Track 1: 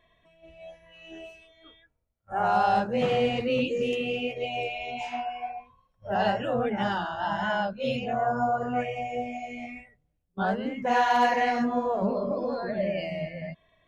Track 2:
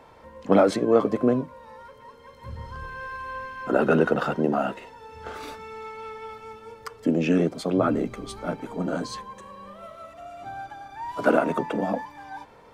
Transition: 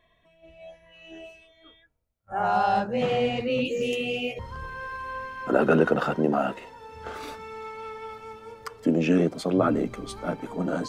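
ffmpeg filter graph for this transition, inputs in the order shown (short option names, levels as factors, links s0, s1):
-filter_complex "[0:a]asettb=1/sr,asplit=3[s0][s1][s2];[s0]atrim=end=3.654[s3];[s1]atrim=start=3.65:end=4.39,asetpts=PTS-STARTPTS,afade=t=in:d=0.004:c=qsin,afade=t=out:st=0.736:d=0.004:c=qsin,aemphasis=mode=production:type=50kf[s4];[s2]atrim=start=4.386[s5];[s3][s4]acrossfade=d=0.004:c1=hsin:c2=qsin[s6];[s6][s5]acrossfade=d=0.004:c1=qsin:c2=hsin,apad=whole_dur=10.88,atrim=end=10.88,atrim=end=4.392[s7];[1:a]atrim=start=2.588:end=9.08[s8];[s7][s8]acrossfade=d=0.004:c1=hsin:c2=hsin"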